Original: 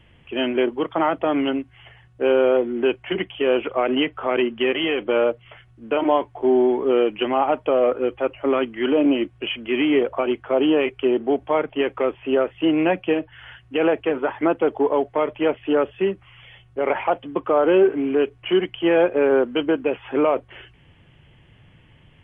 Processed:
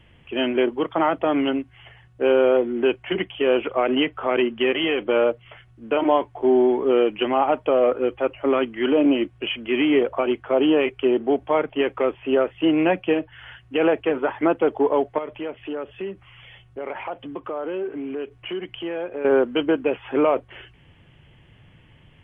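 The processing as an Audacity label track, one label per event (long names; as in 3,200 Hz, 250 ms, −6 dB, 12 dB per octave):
15.180000	19.250000	downward compressor 2.5 to 1, threshold −31 dBFS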